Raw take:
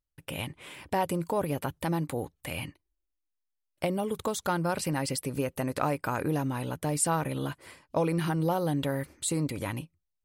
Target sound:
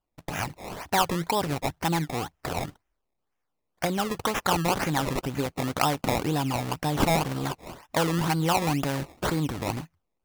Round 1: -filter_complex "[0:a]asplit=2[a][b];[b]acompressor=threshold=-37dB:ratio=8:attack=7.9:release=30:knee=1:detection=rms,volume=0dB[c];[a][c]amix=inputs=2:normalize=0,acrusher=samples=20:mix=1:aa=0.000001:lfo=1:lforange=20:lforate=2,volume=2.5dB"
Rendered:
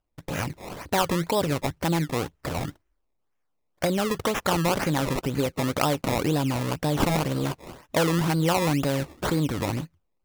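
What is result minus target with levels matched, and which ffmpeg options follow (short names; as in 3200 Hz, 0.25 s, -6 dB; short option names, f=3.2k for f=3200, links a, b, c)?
1000 Hz band -3.0 dB
-filter_complex "[0:a]asplit=2[a][b];[b]acompressor=threshold=-37dB:ratio=8:attack=7.9:release=30:knee=1:detection=rms,highpass=f=710:t=q:w=4[c];[a][c]amix=inputs=2:normalize=0,acrusher=samples=20:mix=1:aa=0.000001:lfo=1:lforange=20:lforate=2,volume=2.5dB"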